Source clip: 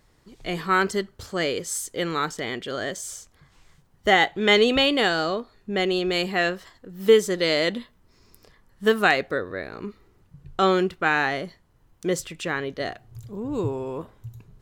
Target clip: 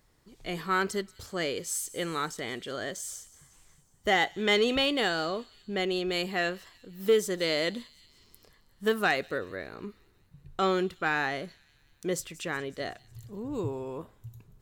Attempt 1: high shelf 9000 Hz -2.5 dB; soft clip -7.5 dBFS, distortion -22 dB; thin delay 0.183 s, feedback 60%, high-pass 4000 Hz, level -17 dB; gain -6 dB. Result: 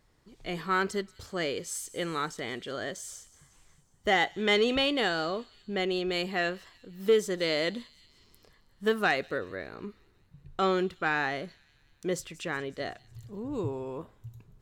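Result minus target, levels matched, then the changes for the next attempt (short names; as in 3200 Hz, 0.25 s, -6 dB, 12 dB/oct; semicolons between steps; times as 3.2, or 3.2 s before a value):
8000 Hz band -3.5 dB
change: high shelf 9000 Hz +7 dB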